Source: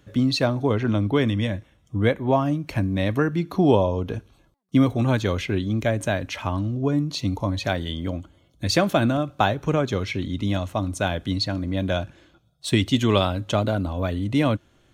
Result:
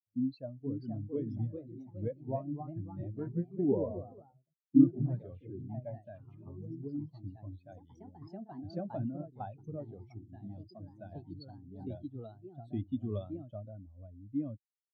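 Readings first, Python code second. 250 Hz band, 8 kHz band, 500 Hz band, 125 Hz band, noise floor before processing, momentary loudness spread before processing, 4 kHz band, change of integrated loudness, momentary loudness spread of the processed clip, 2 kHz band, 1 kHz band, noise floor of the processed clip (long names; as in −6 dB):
−11.0 dB, below −40 dB, −16.5 dB, −15.5 dB, −60 dBFS, 8 LU, below −35 dB, −13.0 dB, 19 LU, below −35 dB, −22.0 dB, −84 dBFS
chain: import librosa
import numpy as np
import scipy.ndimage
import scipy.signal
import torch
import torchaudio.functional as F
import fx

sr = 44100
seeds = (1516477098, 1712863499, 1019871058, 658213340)

y = fx.echo_pitch(x, sr, ms=524, semitones=2, count=3, db_per_echo=-3.0)
y = fx.spectral_expand(y, sr, expansion=2.5)
y = y * librosa.db_to_amplitude(-6.5)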